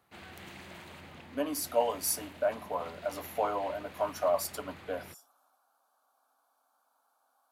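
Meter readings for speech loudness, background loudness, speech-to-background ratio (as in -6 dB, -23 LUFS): -33.5 LUFS, -49.0 LUFS, 15.5 dB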